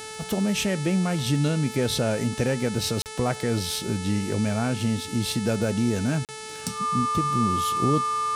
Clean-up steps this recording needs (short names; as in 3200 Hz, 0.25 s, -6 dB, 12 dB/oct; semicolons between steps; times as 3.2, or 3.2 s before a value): de-click; de-hum 436.2 Hz, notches 25; notch 1200 Hz, Q 30; interpolate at 3.02/6.25, 38 ms